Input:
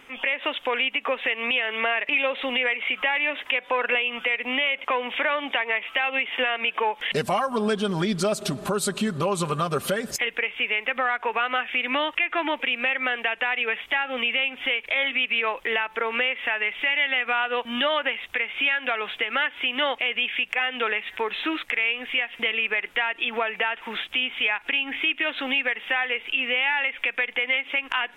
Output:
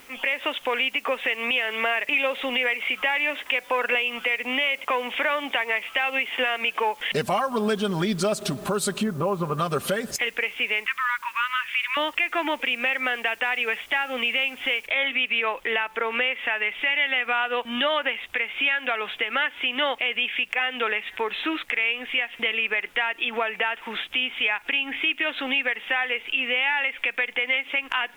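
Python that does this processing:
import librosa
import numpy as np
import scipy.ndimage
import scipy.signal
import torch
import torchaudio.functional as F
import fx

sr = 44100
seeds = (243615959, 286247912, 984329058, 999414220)

y = fx.lowpass(x, sr, hz=1500.0, slope=12, at=(9.03, 9.58))
y = fx.brickwall_bandpass(y, sr, low_hz=930.0, high_hz=7000.0, at=(10.86, 11.97))
y = fx.noise_floor_step(y, sr, seeds[0], at_s=14.87, before_db=-54, after_db=-64, tilt_db=0.0)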